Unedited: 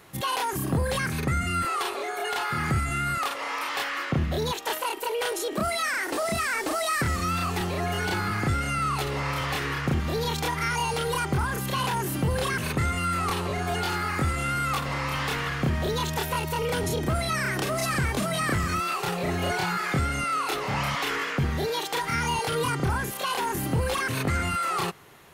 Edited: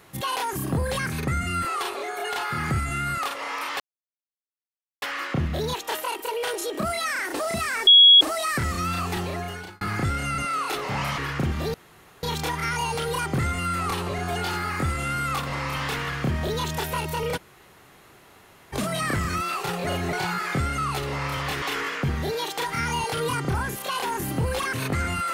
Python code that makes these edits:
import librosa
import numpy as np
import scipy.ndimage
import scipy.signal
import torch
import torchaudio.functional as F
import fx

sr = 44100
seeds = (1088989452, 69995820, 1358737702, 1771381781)

y = fx.edit(x, sr, fx.insert_silence(at_s=3.8, length_s=1.22),
    fx.insert_tone(at_s=6.65, length_s=0.34, hz=3330.0, db=-8.5),
    fx.fade_out_span(start_s=7.67, length_s=0.58),
    fx.swap(start_s=8.82, length_s=0.84, other_s=20.17, other_length_s=0.8),
    fx.insert_room_tone(at_s=10.22, length_s=0.49),
    fx.cut(start_s=11.37, length_s=1.4),
    fx.room_tone_fill(start_s=16.76, length_s=1.36, crossfade_s=0.02),
    fx.reverse_span(start_s=19.26, length_s=0.26), tone=tone)